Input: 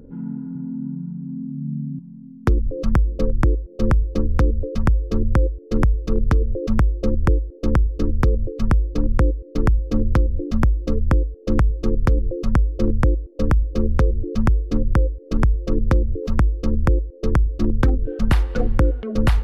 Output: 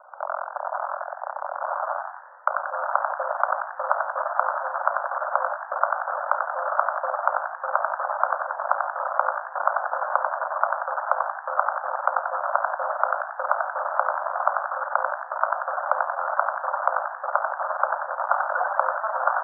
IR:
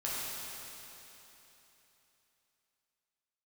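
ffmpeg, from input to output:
-filter_complex "[0:a]acontrast=54,acrusher=bits=4:dc=4:mix=0:aa=0.000001,crystalizer=i=5:c=0,asuperpass=centerf=910:order=20:qfactor=1,asplit=7[link_01][link_02][link_03][link_04][link_05][link_06][link_07];[link_02]adelay=91,afreqshift=70,volume=-5dB[link_08];[link_03]adelay=182,afreqshift=140,volume=-11.2dB[link_09];[link_04]adelay=273,afreqshift=210,volume=-17.4dB[link_10];[link_05]adelay=364,afreqshift=280,volume=-23.6dB[link_11];[link_06]adelay=455,afreqshift=350,volume=-29.8dB[link_12];[link_07]adelay=546,afreqshift=420,volume=-36dB[link_13];[link_01][link_08][link_09][link_10][link_11][link_12][link_13]amix=inputs=7:normalize=0"

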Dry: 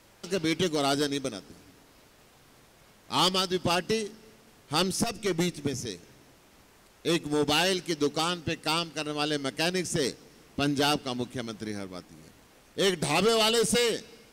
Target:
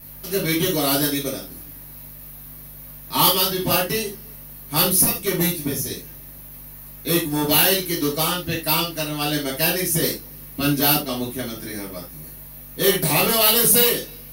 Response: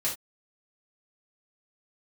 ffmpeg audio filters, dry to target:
-filter_complex "[0:a]acrossover=split=550[link_01][link_02];[link_02]aexciter=amount=9.9:drive=9.3:freq=11000[link_03];[link_01][link_03]amix=inputs=2:normalize=0,aeval=exprs='val(0)+0.00398*(sin(2*PI*50*n/s)+sin(2*PI*2*50*n/s)/2+sin(2*PI*3*50*n/s)/3+sin(2*PI*4*50*n/s)/4+sin(2*PI*5*50*n/s)/5)':channel_layout=same[link_04];[1:a]atrim=start_sample=2205[link_05];[link_04][link_05]afir=irnorm=-1:irlink=0"

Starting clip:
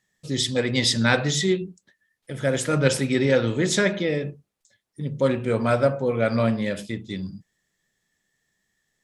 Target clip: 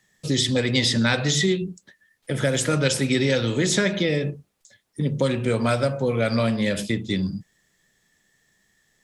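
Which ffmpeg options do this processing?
ffmpeg -i in.wav -filter_complex "[0:a]acrossover=split=180|2900[link_01][link_02][link_03];[link_01]acompressor=threshold=-36dB:ratio=4[link_04];[link_02]acompressor=threshold=-31dB:ratio=4[link_05];[link_03]acompressor=threshold=-33dB:ratio=4[link_06];[link_04][link_05][link_06]amix=inputs=3:normalize=0,volume=8.5dB" out.wav

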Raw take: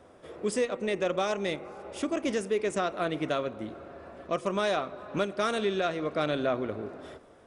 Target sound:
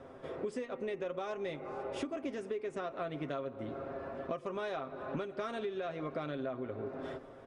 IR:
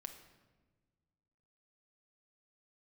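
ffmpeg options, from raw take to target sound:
-af "aemphasis=mode=reproduction:type=75fm,aecho=1:1:7.5:0.53,acompressor=threshold=-37dB:ratio=10,volume=2dB"

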